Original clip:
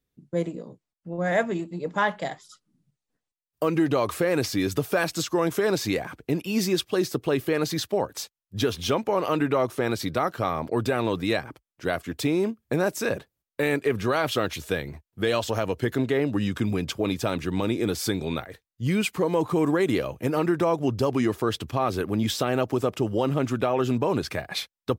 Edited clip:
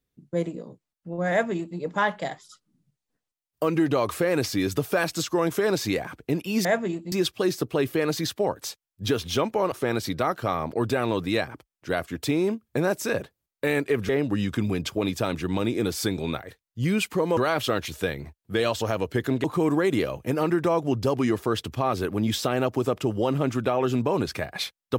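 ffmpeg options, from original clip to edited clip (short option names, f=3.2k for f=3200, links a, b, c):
-filter_complex "[0:a]asplit=7[a][b][c][d][e][f][g];[a]atrim=end=6.652[h];[b]atrim=start=1.308:end=1.782[i];[c]atrim=start=6.648:end=9.252[j];[d]atrim=start=9.678:end=14.052[k];[e]atrim=start=16.118:end=19.402[l];[f]atrim=start=14.048:end=16.122[m];[g]atrim=start=19.398[n];[h][i]acrossfade=d=0.004:c1=hsin:c2=hsin[o];[o][j]acrossfade=d=0.004:c1=hsin:c2=hsin[p];[p][k]acrossfade=d=0.004:c1=hsin:c2=hsin[q];[q][l]acrossfade=d=0.004:c1=hsin:c2=hsin[r];[r][m]acrossfade=d=0.004:c1=hsin:c2=hsin[s];[s][n]acrossfade=d=0.004:c1=hsin:c2=hsin"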